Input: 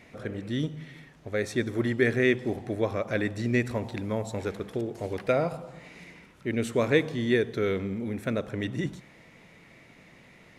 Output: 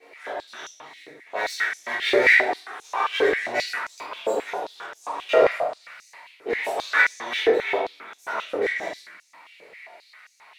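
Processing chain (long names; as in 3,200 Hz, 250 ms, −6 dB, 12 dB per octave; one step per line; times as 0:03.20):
spectral magnitudes quantised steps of 30 dB
0:02.38–0:03.19: comb filter 2.5 ms, depth 83%
half-wave rectification
multi-voice chorus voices 4, 0.26 Hz, delay 24 ms, depth 4.2 ms
convolution reverb RT60 0.85 s, pre-delay 3 ms, DRR −10.5 dB
high-pass on a step sequencer 7.5 Hz 470–6,200 Hz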